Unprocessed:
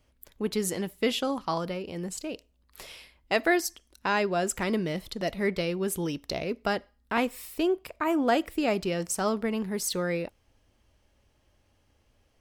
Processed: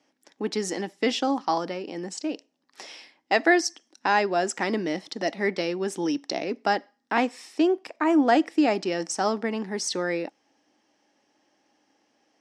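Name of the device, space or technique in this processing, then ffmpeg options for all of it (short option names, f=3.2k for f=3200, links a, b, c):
television speaker: -af "highpass=f=200:w=0.5412,highpass=f=200:w=1.3066,equalizer=f=300:t=q:w=4:g=9,equalizer=f=800:t=q:w=4:g=9,equalizer=f=1.8k:t=q:w=4:g=6,equalizer=f=5.5k:t=q:w=4:g=9,lowpass=f=8k:w=0.5412,lowpass=f=8k:w=1.3066"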